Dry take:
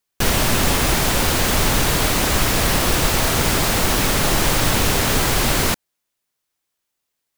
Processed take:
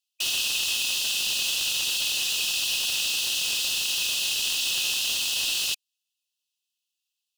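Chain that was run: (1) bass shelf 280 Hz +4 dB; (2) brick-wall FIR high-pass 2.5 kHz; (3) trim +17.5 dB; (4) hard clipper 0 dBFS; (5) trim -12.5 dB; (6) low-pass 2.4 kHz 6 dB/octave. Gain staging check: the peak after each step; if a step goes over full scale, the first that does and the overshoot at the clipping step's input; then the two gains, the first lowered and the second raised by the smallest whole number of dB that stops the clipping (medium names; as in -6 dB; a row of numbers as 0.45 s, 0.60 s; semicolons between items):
-2.0 dBFS, -9.5 dBFS, +8.0 dBFS, 0.0 dBFS, -12.5 dBFS, -15.0 dBFS; step 3, 8.0 dB; step 3 +9.5 dB, step 5 -4.5 dB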